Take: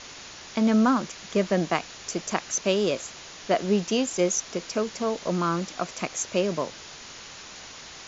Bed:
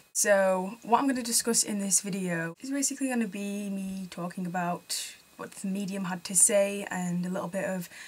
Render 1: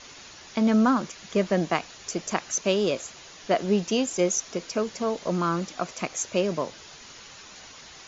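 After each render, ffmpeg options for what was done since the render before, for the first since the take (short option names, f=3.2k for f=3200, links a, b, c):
-af "afftdn=nr=6:nf=-44"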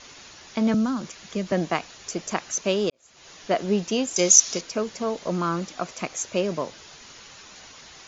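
-filter_complex "[0:a]asettb=1/sr,asplit=3[a][b][c];[a]atrim=end=0.744[d];[b]atrim=start=0.74:end=1.52,asetpts=PTS-STARTPTS,afade=t=in:d=0.004:c=qsin,afade=t=out:st=0.776:d=0.004:c=qsin,acrossover=split=260|3000[e][f][g];[f]acompressor=threshold=-37dB:ratio=2:attack=3.2:release=140:knee=2.83:detection=peak[h];[e][h][g]amix=inputs=3:normalize=0[i];[c]atrim=start=1.516[j];[d][i]acrossfade=d=0.004:c1=hsin:c2=qsin[k];[k][j]acrossfade=d=0.004:c1=qsin:c2=hsin,asettb=1/sr,asplit=3[l][m][n];[l]atrim=end=4.164[o];[m]atrim=start=4.16:end=4.61,asetpts=PTS-STARTPTS,afade=t=in:d=0.004:c=qsin,afade=t=out:st=0.446:d=0.004:c=qsin,equalizer=f=5.8k:w=0.62:g=14[p];[n]atrim=start=4.606[q];[o][p]acrossfade=d=0.004:c1=hsin:c2=qsin[r];[r][q]acrossfade=d=0.004:c1=qsin:c2=hsin,asplit=2[s][t];[s]atrim=end=2.9,asetpts=PTS-STARTPTS,afade=t=out:st=2.896:d=0.004:c=hsin[u];[t]atrim=start=2.9,asetpts=PTS-STARTPTS,afade=t=in:d=0.4:c=qua[v];[u][v]concat=n=2:v=0:a=1"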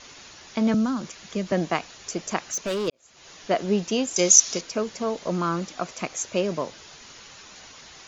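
-filter_complex "[0:a]asettb=1/sr,asplit=3[a][b][c];[a]atrim=end=2.444[d];[b]atrim=start=2.44:end=2.88,asetpts=PTS-STARTPTS,afade=t=in:d=0.004:c=qsin,afade=t=out:st=0.436:d=0.004:c=qsin,volume=23.5dB,asoftclip=hard,volume=-23.5dB[e];[c]atrim=start=2.876[f];[d][e]acrossfade=d=0.004:c1=hsin:c2=qsin[g];[g][f]acrossfade=d=0.004:c1=qsin:c2=hsin"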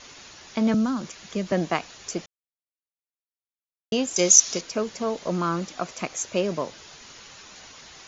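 -filter_complex "[0:a]asplit=3[a][b][c];[a]atrim=end=2.26,asetpts=PTS-STARTPTS,afade=t=out:st=2.256:d=0.004:c=hsin[d];[b]atrim=start=2.26:end=3.92,asetpts=PTS-STARTPTS,volume=0[e];[c]atrim=start=3.92,asetpts=PTS-STARTPTS,afade=t=in:d=0.004:c=hsin[f];[d][e][f]concat=n=3:v=0:a=1"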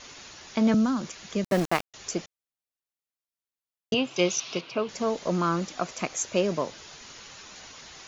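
-filter_complex "[0:a]asettb=1/sr,asplit=3[a][b][c];[a]atrim=end=1.444[d];[b]atrim=start=1.44:end=1.94,asetpts=PTS-STARTPTS,afade=t=in:d=0.004:c=qsin,afade=t=out:st=0.496:d=0.004:c=qsin,aeval=exprs='val(0)*gte(abs(val(0)),0.0355)':c=same[e];[c]atrim=start=1.936[f];[d][e]acrossfade=d=0.004:c1=hsin:c2=qsin[g];[g][f]acrossfade=d=0.004:c1=qsin:c2=hsin,asettb=1/sr,asplit=3[h][i][j];[h]atrim=end=3.944[k];[i]atrim=start=3.94:end=4.89,asetpts=PTS-STARTPTS,afade=t=in:d=0.004:c=qsin,afade=t=out:st=0.946:d=0.004:c=qsin,highpass=f=120:w=0.5412,highpass=f=120:w=1.3066,equalizer=f=130:t=q:w=4:g=9,equalizer=f=220:t=q:w=4:g=-5,equalizer=f=490:t=q:w=4:g=-3,equalizer=f=1.1k:t=q:w=4:g=3,equalizer=f=1.8k:t=q:w=4:g=-8,equalizer=f=2.7k:t=q:w=4:g=7,lowpass=f=4k:w=0.5412,lowpass=f=4k:w=1.3066[l];[j]atrim=start=4.886[m];[k][l]acrossfade=d=0.004:c1=hsin:c2=qsin[n];[n][m]acrossfade=d=0.004:c1=qsin:c2=hsin"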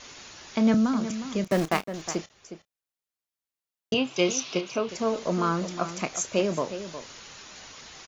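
-filter_complex "[0:a]asplit=2[a][b];[b]adelay=31,volume=-14dB[c];[a][c]amix=inputs=2:normalize=0,asplit=2[d][e];[e]adelay=361.5,volume=-11dB,highshelf=f=4k:g=-8.13[f];[d][f]amix=inputs=2:normalize=0"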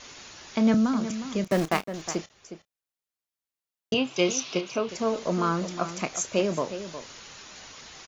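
-af anull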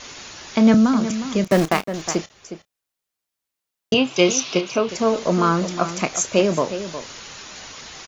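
-af "volume=7.5dB,alimiter=limit=-3dB:level=0:latency=1"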